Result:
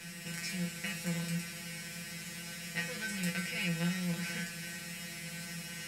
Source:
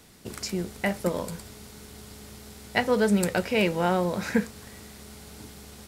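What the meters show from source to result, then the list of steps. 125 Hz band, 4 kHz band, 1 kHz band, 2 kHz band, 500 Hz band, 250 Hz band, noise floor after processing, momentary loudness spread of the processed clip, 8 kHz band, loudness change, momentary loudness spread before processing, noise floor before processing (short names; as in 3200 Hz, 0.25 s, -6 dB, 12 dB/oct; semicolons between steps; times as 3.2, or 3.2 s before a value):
-4.0 dB, -3.0 dB, -19.0 dB, -5.0 dB, -21.0 dB, -10.0 dB, -45 dBFS, 8 LU, -1.0 dB, -11.0 dB, 21 LU, -47 dBFS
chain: per-bin compression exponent 0.4; band shelf 530 Hz -15.5 dB 2.7 oct; resonator 170 Hz, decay 0.25 s, harmonics all, mix 100%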